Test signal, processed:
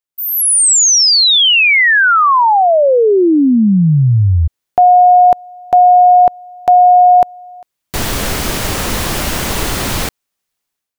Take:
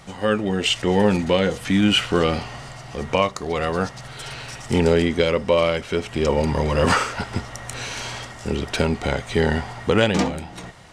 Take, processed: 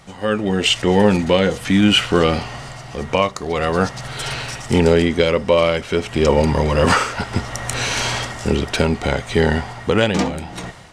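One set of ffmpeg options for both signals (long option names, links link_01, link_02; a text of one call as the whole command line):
ffmpeg -i in.wav -af "dynaudnorm=framelen=160:gausssize=5:maxgain=14dB,volume=-1dB" out.wav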